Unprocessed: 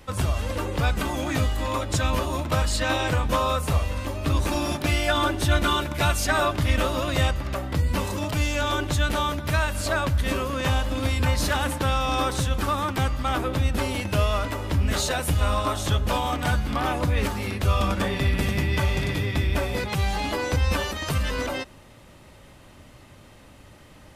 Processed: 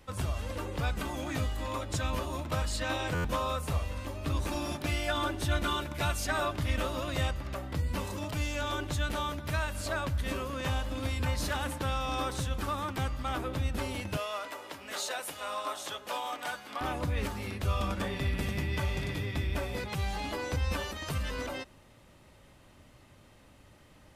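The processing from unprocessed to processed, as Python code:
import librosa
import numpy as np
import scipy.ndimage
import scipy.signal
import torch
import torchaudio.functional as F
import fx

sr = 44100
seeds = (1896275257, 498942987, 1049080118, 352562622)

y = fx.highpass(x, sr, hz=500.0, slope=12, at=(14.17, 16.81))
y = fx.buffer_glitch(y, sr, at_s=(3.14,), block=512, repeats=8)
y = y * librosa.db_to_amplitude(-8.5)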